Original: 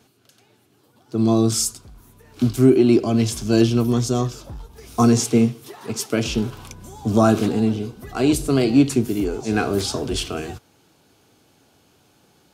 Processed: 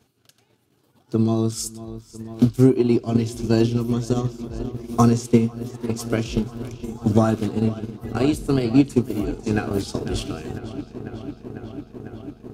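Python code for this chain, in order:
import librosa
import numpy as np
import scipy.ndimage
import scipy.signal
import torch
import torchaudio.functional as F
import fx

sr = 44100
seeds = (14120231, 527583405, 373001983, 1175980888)

y = fx.low_shelf(x, sr, hz=120.0, db=7.0)
y = fx.echo_filtered(y, sr, ms=498, feedback_pct=85, hz=4400.0, wet_db=-13.5)
y = fx.transient(y, sr, attack_db=9, sustain_db=-6)
y = y * 10.0 ** (-6.5 / 20.0)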